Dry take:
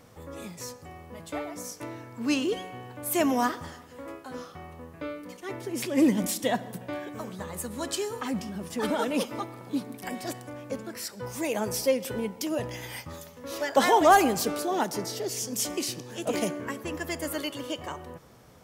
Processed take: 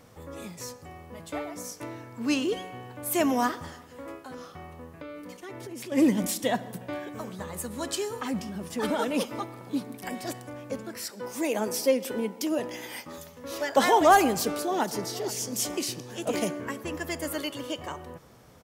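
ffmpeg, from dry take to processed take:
-filter_complex "[0:a]asettb=1/sr,asplit=3[a][b][c];[a]atrim=end=4.214[d];[b]atrim=start=4.21:end=5.92,asetpts=PTS-STARTPTS,afade=t=in:d=0.004:c=qsin,afade=t=out:st=1.706:d=0.004:c=qsin,acompressor=threshold=-36dB:ratio=6:attack=3.2:release=140:knee=1:detection=peak[e];[c]atrim=start=5.916[f];[d][e]acrossfade=d=0.004:c1=hsin:c2=qsin[g];[g][f]acrossfade=d=0.004:c1=qsin:c2=hsin,asettb=1/sr,asplit=3[h][i][j];[h]atrim=end=11.104[k];[i]atrim=start=11.1:end=13.18,asetpts=PTS-STARTPTS,afade=t=in:d=0.004:c=qsin,afade=t=out:st=2.076:d=0.004:c=qsin,lowshelf=f=160:t=q:w=1.5:g=-13.5[l];[j]atrim=start=13.176[m];[k][l]acrossfade=d=0.004:c1=hsin:c2=qsin[n];[n][m]acrossfade=d=0.004:c1=qsin:c2=hsin,asplit=2[o][p];[p]afade=t=in:st=14.4:d=0.01,afade=t=out:st=15.23:d=0.01,aecho=0:1:470|940|1410|1880:0.177828|0.0711312|0.0284525|0.011381[q];[o][q]amix=inputs=2:normalize=0"

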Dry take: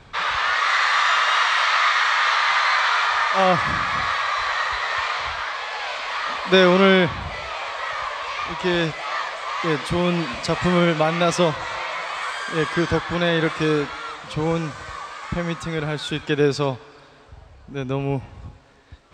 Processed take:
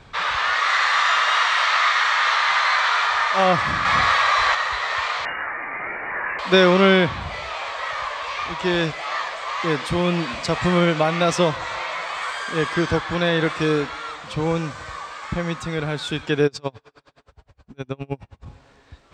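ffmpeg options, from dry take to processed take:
-filter_complex "[0:a]asettb=1/sr,asplit=3[a][b][c];[a]atrim=end=3.854[d];[b]atrim=start=3.85:end=4.55,asetpts=PTS-STARTPTS,afade=t=in:d=0.004:c=qsin,afade=t=out:st=0.696:d=0.004:c=qsin,acontrast=36[e];[c]atrim=start=4.546[f];[d][e]acrossfade=d=0.004:c1=hsin:c2=qsin[g];[g][f]acrossfade=d=0.004:c1=qsin:c2=hsin,asettb=1/sr,asplit=3[h][i][j];[h]atrim=end=5.254[k];[i]atrim=start=5.25:end=6.39,asetpts=PTS-STARTPTS,afade=t=in:d=0.004:c=qsin,afade=t=out:st=1.136:d=0.004:c=qsin,lowpass=f=2.5k:t=q:w=0.5098,lowpass=f=2.5k:t=q:w=0.6013,lowpass=f=2.5k:t=q:w=0.9,lowpass=f=2.5k:t=q:w=2.563,afreqshift=-2900[l];[j]atrim=start=6.386[m];[k][l]acrossfade=d=0.004:c1=hsin:c2=qsin[n];[n][m]acrossfade=d=0.004:c1=qsin:c2=hsin,asplit=3[o][p][q];[o]afade=t=out:st=16.46:d=0.02[r];[p]aeval=exprs='val(0)*pow(10,-34*(0.5-0.5*cos(2*PI*9.6*n/s))/20)':c=same,afade=t=in:st=16.46:d=0.02,afade=t=out:st=18.45:d=0.02[s];[q]afade=t=in:st=18.45:d=0.02[t];[r][s][t]amix=inputs=3:normalize=0"

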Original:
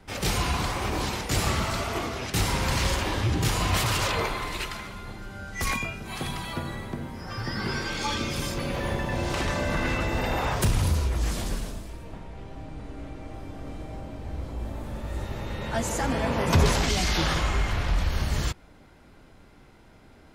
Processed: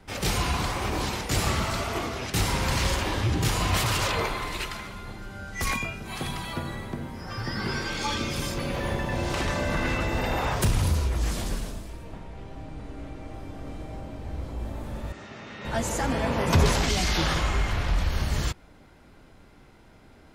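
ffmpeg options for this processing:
-filter_complex "[0:a]asettb=1/sr,asplit=3[a][b][c];[a]atrim=end=15.124[d];[b]atrim=start=15.12:end=15.65,asetpts=PTS-STARTPTS,afade=t=in:d=0.004:c=qsin,afade=t=out:st=0.526:d=0.004:c=qsin,highpass=240,equalizer=f=340:t=q:w=4:g=-7,equalizer=f=520:t=q:w=4:g=-10,equalizer=f=890:t=q:w=4:g=-8,equalizer=f=3.9k:t=q:w=4:g=-5,lowpass=f=6.3k:w=0.5412,lowpass=f=6.3k:w=1.3066[e];[c]atrim=start=15.646[f];[d][e]acrossfade=d=0.004:c1=hsin:c2=qsin[g];[g][f]acrossfade=d=0.004:c1=qsin:c2=hsin"

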